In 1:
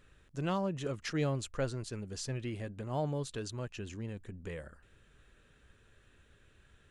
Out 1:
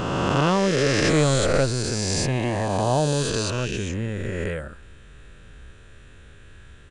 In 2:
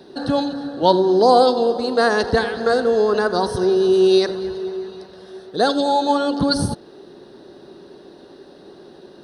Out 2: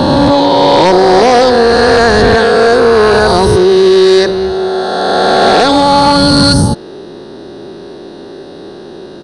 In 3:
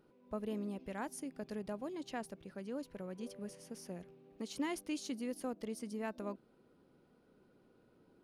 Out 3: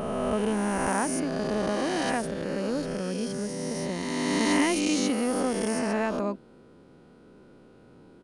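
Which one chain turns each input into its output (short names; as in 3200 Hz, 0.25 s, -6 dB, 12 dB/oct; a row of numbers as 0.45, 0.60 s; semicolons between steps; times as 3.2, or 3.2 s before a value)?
spectral swells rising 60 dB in 2.85 s; low shelf 150 Hz +3.5 dB; in parallel at +2 dB: limiter -8.5 dBFS; on the sum: sine folder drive 6 dB, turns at 5 dBFS; downsampling 22050 Hz; gain -7 dB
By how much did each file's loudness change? +15.0, +10.5, +15.5 LU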